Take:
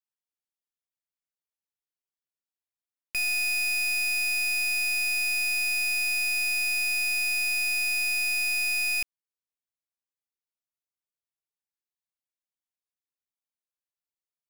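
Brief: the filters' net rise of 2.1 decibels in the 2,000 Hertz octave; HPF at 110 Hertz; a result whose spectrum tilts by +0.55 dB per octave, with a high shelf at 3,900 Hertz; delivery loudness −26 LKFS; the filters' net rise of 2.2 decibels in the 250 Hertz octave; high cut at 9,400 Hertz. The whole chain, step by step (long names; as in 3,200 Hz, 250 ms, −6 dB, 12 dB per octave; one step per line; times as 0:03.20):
high-pass filter 110 Hz
low-pass filter 9,400 Hz
parametric band 250 Hz +3.5 dB
parametric band 2,000 Hz +4.5 dB
high-shelf EQ 3,900 Hz −4 dB
level −3 dB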